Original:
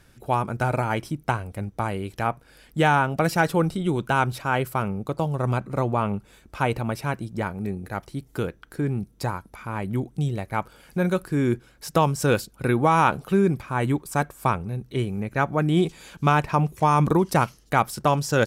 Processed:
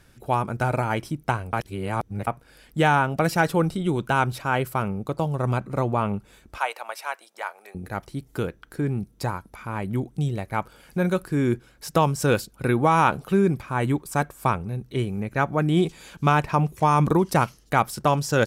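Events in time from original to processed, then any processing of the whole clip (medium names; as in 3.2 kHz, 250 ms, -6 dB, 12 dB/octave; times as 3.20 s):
1.53–2.27 s: reverse
6.58–7.75 s: high-pass 650 Hz 24 dB/octave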